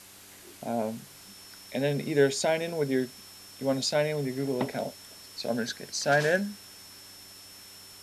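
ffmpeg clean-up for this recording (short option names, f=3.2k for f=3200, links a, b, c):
-af "adeclick=t=4,bandreject=f=97:t=h:w=4,bandreject=f=194:t=h:w=4,bandreject=f=291:t=h:w=4,bandreject=f=388:t=h:w=4,bandreject=f=5.4k:w=30,afwtdn=0.0035"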